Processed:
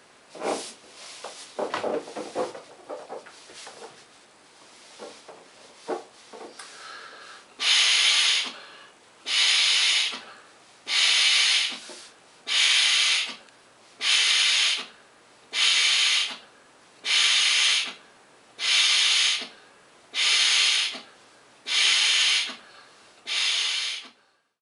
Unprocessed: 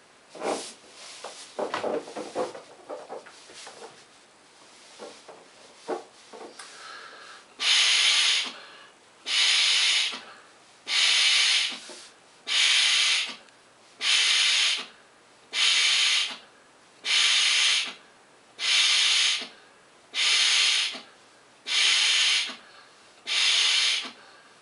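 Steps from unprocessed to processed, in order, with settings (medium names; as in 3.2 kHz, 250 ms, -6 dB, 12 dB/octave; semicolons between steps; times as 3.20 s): fade out at the end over 1.63 s; trim +1 dB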